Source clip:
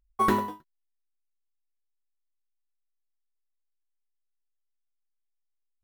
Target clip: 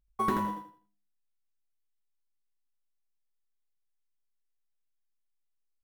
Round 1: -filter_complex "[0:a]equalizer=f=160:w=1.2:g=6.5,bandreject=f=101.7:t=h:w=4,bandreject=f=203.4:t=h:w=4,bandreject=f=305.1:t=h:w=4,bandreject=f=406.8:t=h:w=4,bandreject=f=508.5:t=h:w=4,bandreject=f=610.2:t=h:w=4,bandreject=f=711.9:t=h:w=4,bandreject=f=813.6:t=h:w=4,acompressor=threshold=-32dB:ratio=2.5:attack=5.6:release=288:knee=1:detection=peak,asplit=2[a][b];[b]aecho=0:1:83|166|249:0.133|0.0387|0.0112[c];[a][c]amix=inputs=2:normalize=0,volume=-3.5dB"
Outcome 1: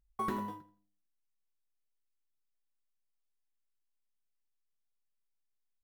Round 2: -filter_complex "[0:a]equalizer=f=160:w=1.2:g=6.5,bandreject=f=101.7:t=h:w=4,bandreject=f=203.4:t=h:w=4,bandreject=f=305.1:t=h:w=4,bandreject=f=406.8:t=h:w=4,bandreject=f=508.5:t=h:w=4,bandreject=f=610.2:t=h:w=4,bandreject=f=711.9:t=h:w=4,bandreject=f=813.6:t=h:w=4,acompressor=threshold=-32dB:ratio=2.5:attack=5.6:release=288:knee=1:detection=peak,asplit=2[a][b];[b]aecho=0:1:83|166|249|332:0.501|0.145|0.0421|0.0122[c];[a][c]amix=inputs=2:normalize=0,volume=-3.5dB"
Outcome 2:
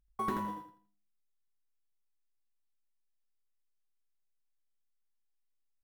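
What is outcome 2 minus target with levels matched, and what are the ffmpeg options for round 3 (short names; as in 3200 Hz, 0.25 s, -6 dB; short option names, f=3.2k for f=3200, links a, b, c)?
compressor: peak gain reduction +5.5 dB
-filter_complex "[0:a]equalizer=f=160:w=1.2:g=6.5,bandreject=f=101.7:t=h:w=4,bandreject=f=203.4:t=h:w=4,bandreject=f=305.1:t=h:w=4,bandreject=f=406.8:t=h:w=4,bandreject=f=508.5:t=h:w=4,bandreject=f=610.2:t=h:w=4,bandreject=f=711.9:t=h:w=4,bandreject=f=813.6:t=h:w=4,acompressor=threshold=-22.5dB:ratio=2.5:attack=5.6:release=288:knee=1:detection=peak,asplit=2[a][b];[b]aecho=0:1:83|166|249|332:0.501|0.145|0.0421|0.0122[c];[a][c]amix=inputs=2:normalize=0,volume=-3.5dB"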